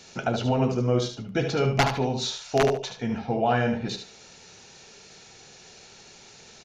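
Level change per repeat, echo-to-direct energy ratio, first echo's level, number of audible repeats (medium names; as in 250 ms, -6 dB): -13.5 dB, -7.5 dB, -7.5 dB, 2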